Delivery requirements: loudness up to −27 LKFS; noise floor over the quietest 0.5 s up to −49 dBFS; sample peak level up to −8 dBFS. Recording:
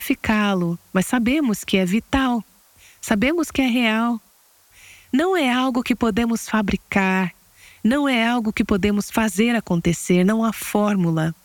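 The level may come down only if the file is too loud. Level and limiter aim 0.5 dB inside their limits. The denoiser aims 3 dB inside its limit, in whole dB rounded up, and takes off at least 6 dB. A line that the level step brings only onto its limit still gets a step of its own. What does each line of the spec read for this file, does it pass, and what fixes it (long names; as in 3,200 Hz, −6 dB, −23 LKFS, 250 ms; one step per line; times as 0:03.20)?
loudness −20.0 LKFS: out of spec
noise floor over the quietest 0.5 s −56 dBFS: in spec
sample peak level −4.0 dBFS: out of spec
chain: level −7.5 dB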